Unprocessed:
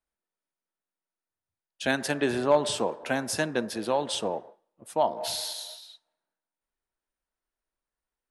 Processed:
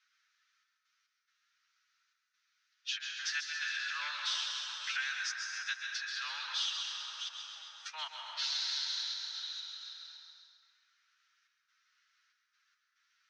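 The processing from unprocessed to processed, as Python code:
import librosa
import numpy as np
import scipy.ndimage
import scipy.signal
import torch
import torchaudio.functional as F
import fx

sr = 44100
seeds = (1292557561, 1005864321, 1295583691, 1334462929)

p1 = fx.reverse_delay(x, sr, ms=207, wet_db=-13.0)
p2 = scipy.signal.sosfilt(scipy.signal.cheby1(4, 1.0, [1300.0, 6100.0], 'bandpass', fs=sr, output='sos'), p1)
p3 = fx.step_gate(p2, sr, bpm=113, pattern='xxx.x.xxxx.', floor_db=-24.0, edge_ms=4.5)
p4 = fx.stretch_vocoder(p3, sr, factor=1.6)
p5 = p4 + fx.echo_wet_highpass(p4, sr, ms=133, feedback_pct=51, hz=2100.0, wet_db=-9.0, dry=0)
p6 = fx.rev_plate(p5, sr, seeds[0], rt60_s=2.2, hf_ratio=0.45, predelay_ms=110, drr_db=3.0)
y = fx.band_squash(p6, sr, depth_pct=70)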